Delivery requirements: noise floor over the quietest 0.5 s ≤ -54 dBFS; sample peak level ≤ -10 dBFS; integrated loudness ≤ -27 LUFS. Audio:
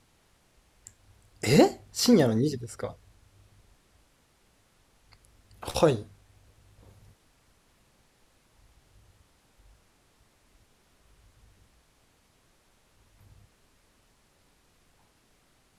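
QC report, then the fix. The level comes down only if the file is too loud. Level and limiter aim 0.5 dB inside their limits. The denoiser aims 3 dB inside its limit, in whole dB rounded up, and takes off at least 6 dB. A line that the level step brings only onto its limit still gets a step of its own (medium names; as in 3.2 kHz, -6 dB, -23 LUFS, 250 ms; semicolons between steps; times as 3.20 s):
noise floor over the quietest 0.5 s -65 dBFS: pass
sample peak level -6.0 dBFS: fail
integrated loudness -25.5 LUFS: fail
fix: trim -2 dB; peak limiter -10.5 dBFS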